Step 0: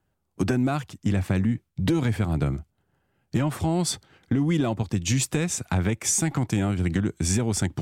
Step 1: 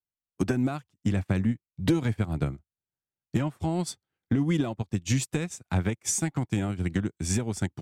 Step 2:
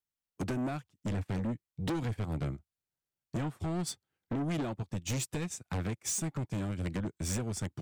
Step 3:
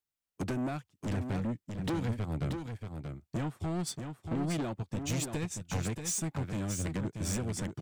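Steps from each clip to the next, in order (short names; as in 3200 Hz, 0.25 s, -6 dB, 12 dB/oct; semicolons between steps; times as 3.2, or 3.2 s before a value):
upward expander 2.5:1, over -40 dBFS; gain +1 dB
soft clip -30 dBFS, distortion -7 dB
echo 0.632 s -6.5 dB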